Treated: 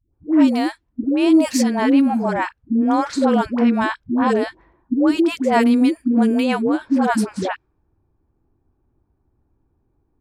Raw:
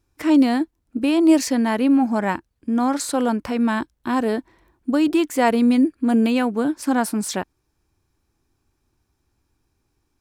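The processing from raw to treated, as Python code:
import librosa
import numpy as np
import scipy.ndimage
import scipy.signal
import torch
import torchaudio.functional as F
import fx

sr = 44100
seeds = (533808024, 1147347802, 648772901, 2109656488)

y = fx.env_lowpass(x, sr, base_hz=800.0, full_db=-13.5)
y = fx.rider(y, sr, range_db=3, speed_s=2.0)
y = fx.dispersion(y, sr, late='highs', ms=135.0, hz=440.0)
y = y * librosa.db_to_amplitude(2.0)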